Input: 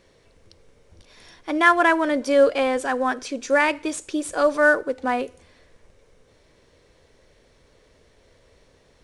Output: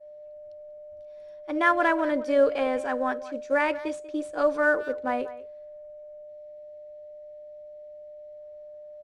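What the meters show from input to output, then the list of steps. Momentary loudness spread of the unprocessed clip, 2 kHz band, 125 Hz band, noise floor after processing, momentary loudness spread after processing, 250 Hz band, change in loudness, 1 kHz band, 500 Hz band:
11 LU, -6.5 dB, n/a, -44 dBFS, 22 LU, -5.0 dB, -5.0 dB, -5.5 dB, -3.5 dB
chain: spectral gain 6.19–8.37, 530–1800 Hz -6 dB; whine 600 Hz -27 dBFS; high shelf 3500 Hz -10 dB; expander -23 dBFS; speakerphone echo 0.19 s, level -16 dB; gain -4.5 dB

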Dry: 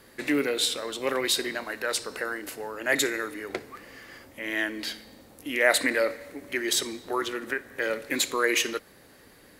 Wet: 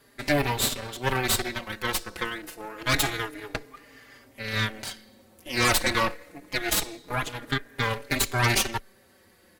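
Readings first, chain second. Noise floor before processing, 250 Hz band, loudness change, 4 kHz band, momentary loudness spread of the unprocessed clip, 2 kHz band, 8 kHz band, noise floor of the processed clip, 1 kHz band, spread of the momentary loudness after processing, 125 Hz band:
-54 dBFS, -1.0 dB, +1.0 dB, +0.5 dB, 14 LU, -0.5 dB, +1.0 dB, -59 dBFS, +5.0 dB, 14 LU, +19.0 dB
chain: added harmonics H 8 -7 dB, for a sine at -6 dBFS; endless flanger 4.5 ms -0.26 Hz; gain -1.5 dB

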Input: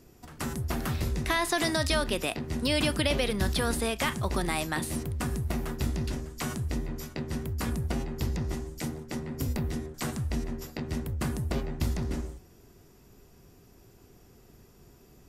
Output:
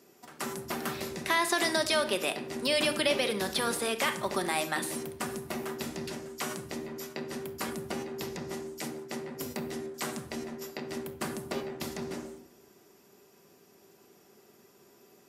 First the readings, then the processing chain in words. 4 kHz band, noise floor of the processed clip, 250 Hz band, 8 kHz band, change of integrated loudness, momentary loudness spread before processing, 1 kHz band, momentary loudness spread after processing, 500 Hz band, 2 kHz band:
+0.5 dB, -61 dBFS, -4.0 dB, +0.5 dB, -1.5 dB, 10 LU, +1.0 dB, 12 LU, +1.0 dB, +0.5 dB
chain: HPF 310 Hz 12 dB/oct; shoebox room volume 2000 m³, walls furnished, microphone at 1.2 m

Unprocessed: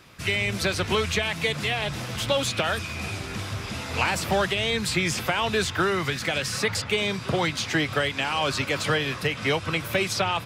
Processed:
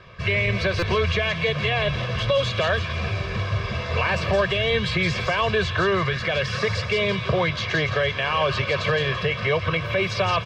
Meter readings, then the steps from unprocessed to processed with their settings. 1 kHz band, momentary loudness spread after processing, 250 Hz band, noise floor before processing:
+2.0 dB, 3 LU, 0.0 dB, -36 dBFS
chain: high shelf 11000 Hz -5.5 dB; comb 1.8 ms, depth 85%; limiter -15.5 dBFS, peak gain reduction 8.5 dB; air absorption 230 m; thin delay 0.168 s, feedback 49%, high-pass 3000 Hz, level -4 dB; stuck buffer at 0.79, samples 256, times 5; gain +4.5 dB

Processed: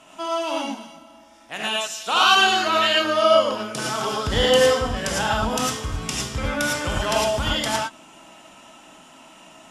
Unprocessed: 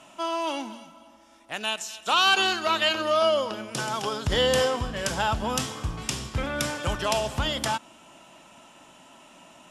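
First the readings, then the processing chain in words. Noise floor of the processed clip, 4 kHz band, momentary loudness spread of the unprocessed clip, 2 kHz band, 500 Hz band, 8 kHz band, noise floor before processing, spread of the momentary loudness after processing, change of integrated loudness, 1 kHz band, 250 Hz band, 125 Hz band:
-49 dBFS, +4.5 dB, 10 LU, +5.0 dB, +5.5 dB, +5.0 dB, -53 dBFS, 12 LU, +5.0 dB, +5.0 dB, +5.0 dB, +2.5 dB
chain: non-linear reverb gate 0.13 s rising, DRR -3 dB

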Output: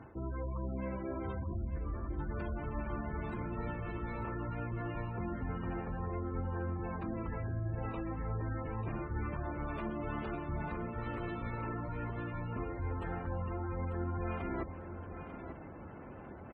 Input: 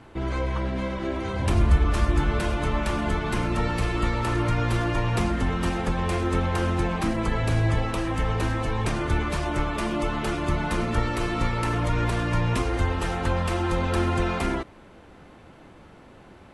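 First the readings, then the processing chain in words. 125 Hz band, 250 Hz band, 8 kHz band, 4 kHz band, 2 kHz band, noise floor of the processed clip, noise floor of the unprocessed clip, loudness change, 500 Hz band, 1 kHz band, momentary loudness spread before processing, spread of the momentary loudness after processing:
-12.5 dB, -12.5 dB, under -40 dB, under -25 dB, -16.5 dB, -48 dBFS, -49 dBFS, -14.0 dB, -13.0 dB, -13.5 dB, 4 LU, 4 LU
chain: reverse; compressor 6:1, threshold -36 dBFS, peak gain reduction 21 dB; reverse; HPF 54 Hz 12 dB/oct; low shelf 93 Hz +5.5 dB; notches 60/120/180 Hz; spectral gate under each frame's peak -20 dB strong; high shelf 5400 Hz -10 dB; on a send: feedback echo 0.893 s, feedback 19%, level -10 dB

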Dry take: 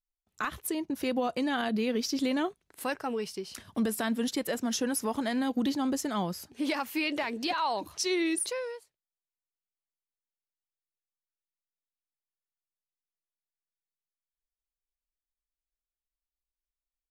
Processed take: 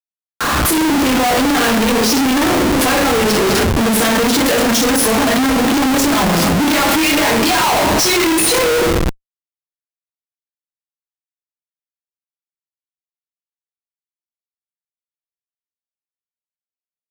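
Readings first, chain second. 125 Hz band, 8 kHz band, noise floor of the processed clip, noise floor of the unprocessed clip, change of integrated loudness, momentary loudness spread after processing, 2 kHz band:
+24.0 dB, +20.0 dB, under -85 dBFS, under -85 dBFS, +18.0 dB, 2 LU, +19.5 dB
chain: two-slope reverb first 0.5 s, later 2.8 s, from -19 dB, DRR -8.5 dB; Schmitt trigger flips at -35 dBFS; AGC gain up to 7 dB; gain +5 dB

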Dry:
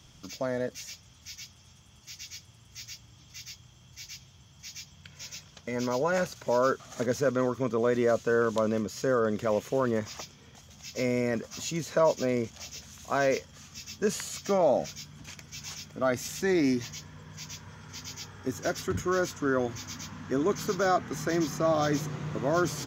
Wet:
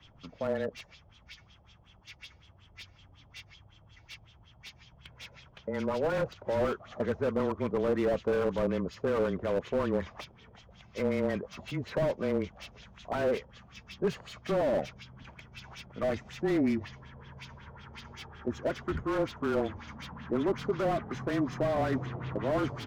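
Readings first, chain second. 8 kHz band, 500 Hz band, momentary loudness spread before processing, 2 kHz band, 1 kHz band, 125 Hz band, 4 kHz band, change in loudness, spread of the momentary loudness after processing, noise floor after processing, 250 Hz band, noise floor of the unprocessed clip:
under -15 dB, -3.0 dB, 19 LU, -5.5 dB, -5.0 dB, -1.5 dB, -6.0 dB, -2.5 dB, 21 LU, -59 dBFS, -2.0 dB, -56 dBFS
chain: frequency shift -21 Hz; LFO low-pass sine 5.4 Hz 620–3600 Hz; slew limiter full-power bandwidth 39 Hz; gain -2.5 dB

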